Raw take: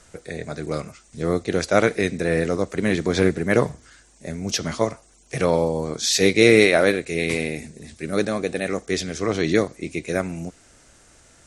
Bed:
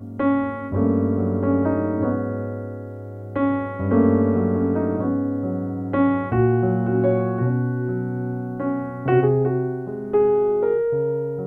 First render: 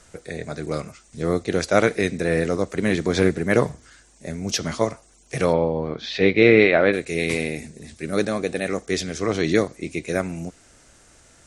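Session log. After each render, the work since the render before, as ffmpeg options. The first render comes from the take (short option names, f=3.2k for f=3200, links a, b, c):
-filter_complex "[0:a]asplit=3[a][b][c];[a]afade=t=out:st=5.52:d=0.02[d];[b]lowpass=f=3.3k:w=0.5412,lowpass=f=3.3k:w=1.3066,afade=t=in:st=5.52:d=0.02,afade=t=out:st=6.92:d=0.02[e];[c]afade=t=in:st=6.92:d=0.02[f];[d][e][f]amix=inputs=3:normalize=0"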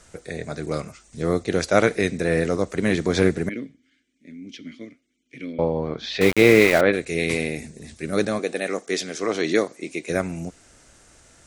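-filter_complex "[0:a]asettb=1/sr,asplit=3[a][b][c];[a]atrim=end=3.494[d];[b]atrim=start=3.49:end=5.59,asetpts=PTS-STARTPTS,afade=t=in:d=0.004:c=qsin,afade=t=out:st=2.096:d=0.004:c=qsin,asplit=3[e][f][g];[e]bandpass=f=270:t=q:w=8,volume=0dB[h];[f]bandpass=f=2.29k:t=q:w=8,volume=-6dB[i];[g]bandpass=f=3.01k:t=q:w=8,volume=-9dB[j];[h][i][j]amix=inputs=3:normalize=0[k];[c]atrim=start=5.586[l];[d][k]acrossfade=d=0.004:c1=hsin:c2=qsin[m];[m][l]acrossfade=d=0.004:c1=qsin:c2=hsin,asettb=1/sr,asplit=3[n][o][p];[n]atrim=end=6.214[q];[o]atrim=start=6.21:end=6.81,asetpts=PTS-STARTPTS,afade=t=in:d=0.004:c=qsin,afade=t=out:st=0.596:d=0.004:c=qsin,aeval=exprs='val(0)*gte(abs(val(0)),0.0841)':c=same[r];[p]atrim=start=6.806[s];[q][r]acrossfade=d=0.004:c1=hsin:c2=qsin[t];[t][s]acrossfade=d=0.004:c1=qsin:c2=hsin,asettb=1/sr,asplit=3[u][v][w];[u]atrim=end=8.394[x];[v]atrim=start=8.39:end=10.1,asetpts=PTS-STARTPTS,afade=t=in:d=0.004:c=qsin,afade=t=out:st=1.706:d=0.004:c=qsin,highpass=260[y];[w]atrim=start=10.096[z];[x][y]acrossfade=d=0.004:c1=hsin:c2=qsin[aa];[aa][z]acrossfade=d=0.004:c1=qsin:c2=hsin"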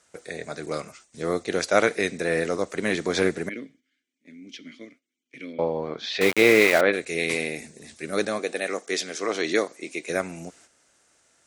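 -af "agate=range=-9dB:threshold=-49dB:ratio=16:detection=peak,highpass=f=430:p=1"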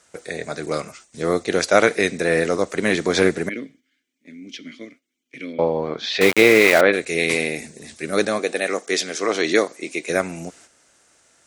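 -af "volume=5.5dB,alimiter=limit=-2dB:level=0:latency=1"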